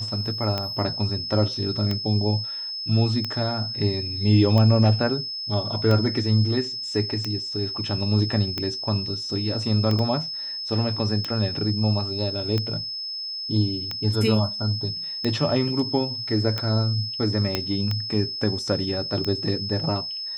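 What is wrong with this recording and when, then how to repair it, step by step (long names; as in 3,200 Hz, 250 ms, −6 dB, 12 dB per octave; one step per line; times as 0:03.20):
scratch tick 45 rpm −13 dBFS
whistle 5,200 Hz −29 dBFS
0:09.99: drop-out 2.2 ms
0:17.55: click −8 dBFS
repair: click removal
notch filter 5,200 Hz, Q 30
repair the gap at 0:09.99, 2.2 ms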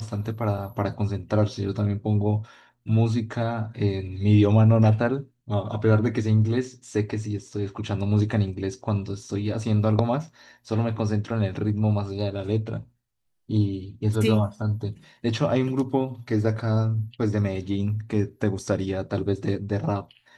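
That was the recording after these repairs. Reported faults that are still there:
0:17.55: click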